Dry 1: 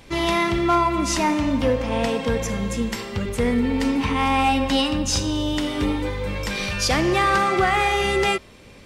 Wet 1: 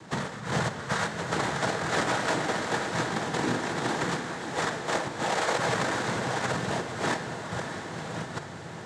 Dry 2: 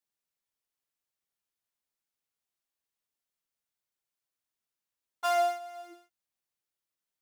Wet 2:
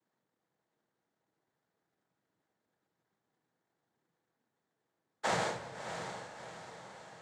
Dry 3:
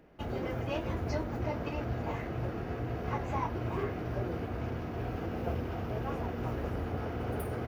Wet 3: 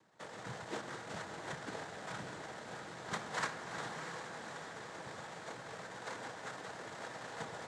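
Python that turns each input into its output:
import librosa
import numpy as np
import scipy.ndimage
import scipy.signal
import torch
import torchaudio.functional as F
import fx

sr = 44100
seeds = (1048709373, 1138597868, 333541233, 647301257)

y = scipy.signal.sosfilt(scipy.signal.butter(4, 930.0, 'highpass', fs=sr, output='sos'), x)
y = fx.high_shelf(y, sr, hz=3500.0, db=5.0)
y = fx.over_compress(y, sr, threshold_db=-30.0, ratio=-0.5)
y = fx.sample_hold(y, sr, seeds[0], rate_hz=2200.0, jitter_pct=0)
y = fx.noise_vocoder(y, sr, seeds[1], bands=6)
y = fx.echo_diffused(y, sr, ms=651, feedback_pct=51, wet_db=-8)
y = fx.room_shoebox(y, sr, seeds[2], volume_m3=1100.0, walls='mixed', distance_m=0.61)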